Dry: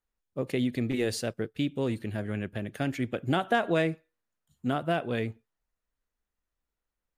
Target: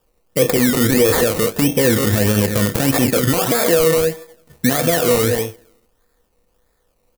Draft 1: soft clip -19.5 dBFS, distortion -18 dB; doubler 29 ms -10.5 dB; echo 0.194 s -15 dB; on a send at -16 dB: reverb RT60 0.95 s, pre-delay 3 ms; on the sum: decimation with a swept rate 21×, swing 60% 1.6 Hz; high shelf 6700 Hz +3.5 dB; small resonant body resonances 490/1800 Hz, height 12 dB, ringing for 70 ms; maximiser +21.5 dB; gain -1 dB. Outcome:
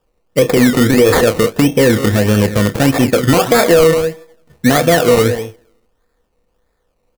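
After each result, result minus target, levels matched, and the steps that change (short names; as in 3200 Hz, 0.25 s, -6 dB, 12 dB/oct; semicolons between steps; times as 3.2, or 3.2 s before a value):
soft clip: distortion +19 dB; 8000 Hz band -5.0 dB
change: soft clip -8.5 dBFS, distortion -37 dB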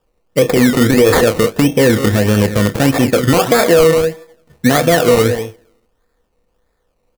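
8000 Hz band -5.0 dB
change: high shelf 6700 Hz +15 dB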